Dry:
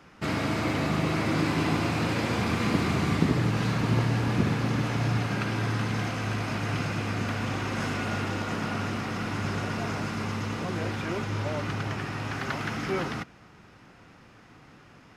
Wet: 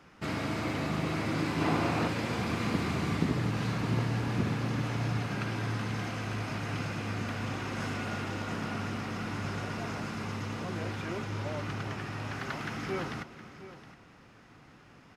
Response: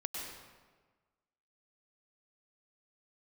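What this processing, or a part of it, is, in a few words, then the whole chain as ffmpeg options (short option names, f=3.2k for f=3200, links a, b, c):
ducked reverb: -filter_complex "[0:a]asplit=3[a][b][c];[1:a]atrim=start_sample=2205[d];[b][d]afir=irnorm=-1:irlink=0[e];[c]apad=whole_len=668886[f];[e][f]sidechaincompress=threshold=-43dB:ratio=8:attack=16:release=216,volume=-9.5dB[g];[a][g]amix=inputs=2:normalize=0,asettb=1/sr,asplit=3[h][i][j];[h]atrim=end=1.614[k];[i]atrim=start=1.61:end=2.08,asetpts=PTS-STARTPTS,afade=t=in:d=0.004:c=qsin,afade=t=out:st=0.466:d=0.004:c=qsin,equalizer=f=690:w=0.44:g=6[l];[j]atrim=start=2.076[m];[k][l]acrossfade=d=0.004:c1=hsin:c2=qsin[n];[n][m]acrossfade=d=0.004:c1=qsin:c2=hsin,aecho=1:1:716:0.178,volume=-5.5dB"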